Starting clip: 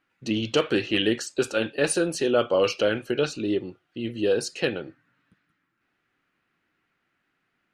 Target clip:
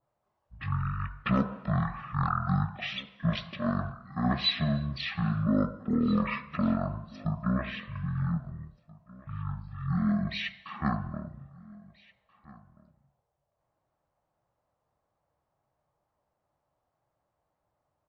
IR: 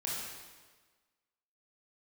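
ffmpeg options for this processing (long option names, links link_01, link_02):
-filter_complex "[0:a]aecho=1:1:697:0.075,asplit=2[link_01][link_02];[1:a]atrim=start_sample=2205,afade=type=out:start_time=0.15:duration=0.01,atrim=end_sample=7056,asetrate=29106,aresample=44100[link_03];[link_02][link_03]afir=irnorm=-1:irlink=0,volume=-26dB[link_04];[link_01][link_04]amix=inputs=2:normalize=0,asetrate=18846,aresample=44100,adynamicequalizer=threshold=0.00708:dfrequency=2000:dqfactor=0.7:tfrequency=2000:tqfactor=0.7:attack=5:release=100:ratio=0.375:range=2.5:mode=boostabove:tftype=highshelf,volume=-6dB"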